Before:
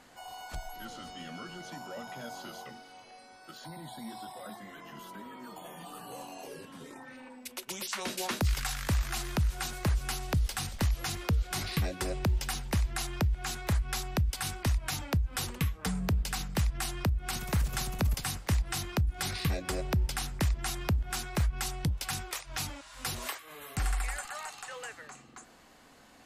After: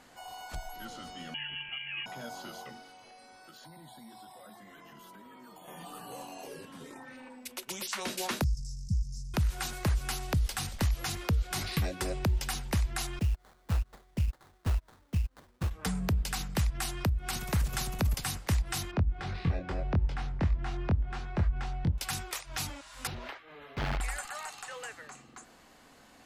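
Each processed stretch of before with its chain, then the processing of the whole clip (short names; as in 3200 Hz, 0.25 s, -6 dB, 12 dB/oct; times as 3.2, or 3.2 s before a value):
1.34–2.06 low shelf 350 Hz +9 dB + inverted band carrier 3100 Hz
2.89–5.68 compressor 3:1, threshold -50 dBFS + high shelf 12000 Hz +4 dB
8.44–9.34 Chebyshev band-stop 200–5200 Hz, order 5 + air absorption 130 m
13.19–15.71 gate -30 dBFS, range -24 dB + bell 140 Hz -6.5 dB 0.38 oct + sample-rate reducer 2700 Hz, jitter 20%
18.91–21.98 tape spacing loss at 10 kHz 33 dB + doubler 23 ms -4 dB
23.07–24.01 notch 1100 Hz + wrapped overs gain 25 dB + air absorption 290 m
whole clip: dry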